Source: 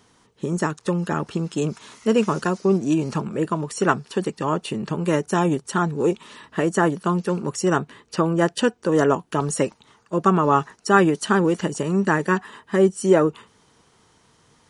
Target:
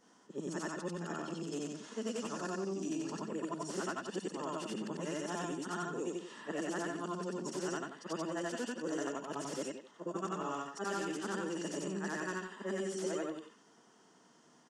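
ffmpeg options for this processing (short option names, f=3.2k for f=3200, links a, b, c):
-filter_complex "[0:a]afftfilt=real='re':imag='-im':win_size=8192:overlap=0.75,acrossover=split=2400[a][b];[a]acompressor=threshold=-36dB:ratio=6[c];[b]aeval=exprs='(mod(63.1*val(0)+1,2)-1)/63.1':c=same[d];[c][d]amix=inputs=2:normalize=0,highpass=f=190:w=0.5412,highpass=f=190:w=1.3066,equalizer=f=1.1k:t=q:w=4:g=-3,equalizer=f=2.3k:t=q:w=4:g=-10,equalizer=f=3.9k:t=q:w=4:g=-10,lowpass=f=7.8k:w=0.5412,lowpass=f=7.8k:w=1.3066,asplit=2[e][f];[f]adelay=90,highpass=300,lowpass=3.4k,asoftclip=type=hard:threshold=-34dB,volume=-7dB[g];[e][g]amix=inputs=2:normalize=0"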